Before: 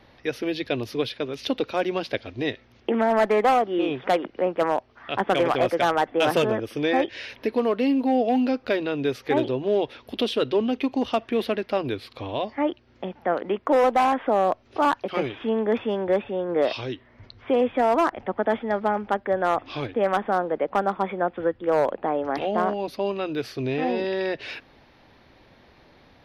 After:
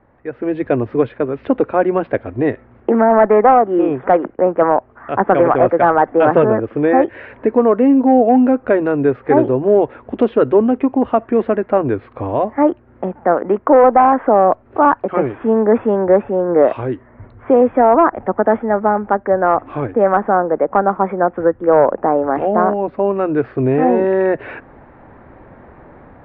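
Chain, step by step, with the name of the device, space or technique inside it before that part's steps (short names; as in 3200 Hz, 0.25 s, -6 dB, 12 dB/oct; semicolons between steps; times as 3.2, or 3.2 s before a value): 4.09–4.74 gate -38 dBFS, range -13 dB; action camera in a waterproof case (LPF 1600 Hz 24 dB/oct; AGC gain up to 14 dB; AAC 128 kbps 48000 Hz)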